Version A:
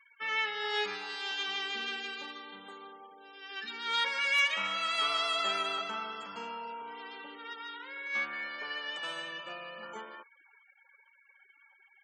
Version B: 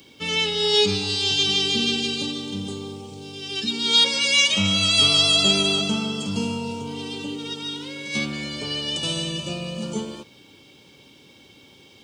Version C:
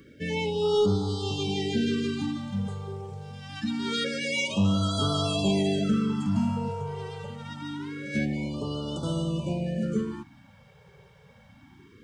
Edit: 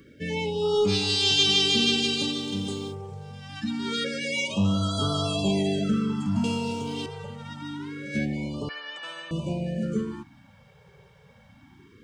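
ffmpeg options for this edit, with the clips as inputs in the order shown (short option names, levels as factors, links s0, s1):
-filter_complex "[1:a]asplit=2[s0][s1];[2:a]asplit=4[s2][s3][s4][s5];[s2]atrim=end=0.94[s6];[s0]atrim=start=0.84:end=2.97[s7];[s3]atrim=start=2.87:end=6.442[s8];[s1]atrim=start=6.438:end=7.062[s9];[s4]atrim=start=7.058:end=8.692[s10];[0:a]atrim=start=8.688:end=9.312[s11];[s5]atrim=start=9.308[s12];[s6][s7]acrossfade=d=0.1:c1=tri:c2=tri[s13];[s13][s8]acrossfade=d=0.1:c1=tri:c2=tri[s14];[s14][s9]acrossfade=d=0.004:c1=hsin:c2=hsin[s15];[s15][s10]acrossfade=d=0.004:c1=hsin:c2=hsin[s16];[s16][s11]acrossfade=d=0.004:c1=hsin:c2=hsin[s17];[s17][s12]acrossfade=d=0.004:c1=hsin:c2=hsin"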